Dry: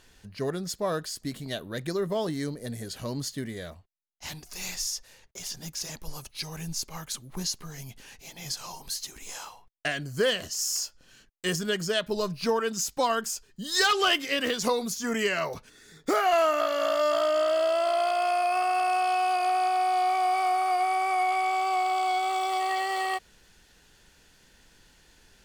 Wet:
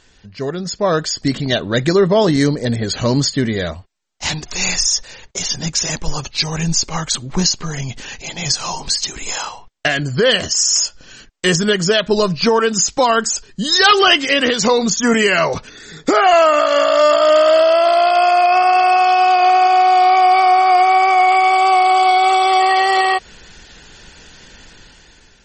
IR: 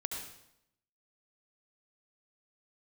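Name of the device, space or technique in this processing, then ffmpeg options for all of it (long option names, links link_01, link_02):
low-bitrate web radio: -filter_complex "[0:a]asettb=1/sr,asplit=3[link_01][link_02][link_03];[link_01]atrim=end=16.124[link_04];[link_02]atrim=start=16.12:end=17.87,asetpts=PTS-STARTPTS,afade=type=in:duration=0.004:curve=qsin,afade=type=out:start_time=1.746:duration=0.004:curve=qsin,equalizer=frequency=220:width=1.4:gain=-3.5[link_05];[link_03]atrim=start=17.866[link_06];[link_04][link_05]acrossfade=duration=0.004:curve1=hsin:curve2=qsin[link_07];[link_07][link_06]acrossfade=duration=0.004:curve1=qsin:curve2=hsin,dynaudnorm=framelen=270:gausssize=7:maxgain=11.5dB,alimiter=limit=-10dB:level=0:latency=1:release=190,volume=6.5dB" -ar 48000 -c:a libmp3lame -b:a 32k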